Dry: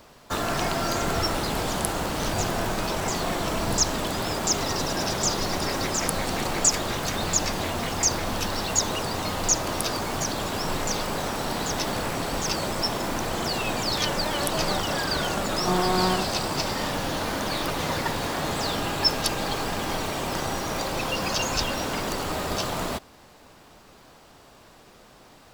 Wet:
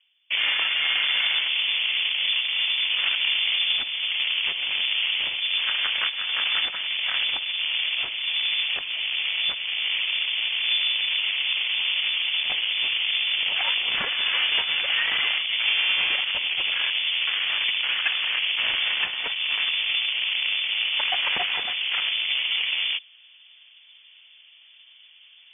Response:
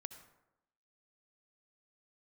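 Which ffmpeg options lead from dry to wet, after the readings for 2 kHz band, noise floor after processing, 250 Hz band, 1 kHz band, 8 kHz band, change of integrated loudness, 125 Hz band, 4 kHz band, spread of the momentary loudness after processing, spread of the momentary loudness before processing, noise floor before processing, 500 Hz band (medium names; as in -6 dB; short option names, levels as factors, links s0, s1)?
+8.0 dB, -52 dBFS, under -25 dB, -11.5 dB, under -40 dB, +4.0 dB, under -25 dB, +9.5 dB, 3 LU, 5 LU, -52 dBFS, -19.0 dB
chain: -af "bandreject=f=980:w=17,afwtdn=0.0282,adynamicsmooth=sensitivity=2.5:basefreq=810,alimiter=limit=0.119:level=0:latency=1:release=350,areverse,acompressor=mode=upward:threshold=0.00891:ratio=2.5,areverse,equalizer=f=100:t=o:w=2.5:g=-11,lowpass=f=3000:t=q:w=0.5098,lowpass=f=3000:t=q:w=0.6013,lowpass=f=3000:t=q:w=0.9,lowpass=f=3000:t=q:w=2.563,afreqshift=-3500,volume=2.37"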